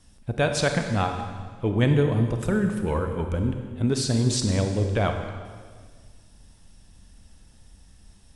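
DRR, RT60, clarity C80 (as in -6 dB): 5.0 dB, 1.7 s, 7.0 dB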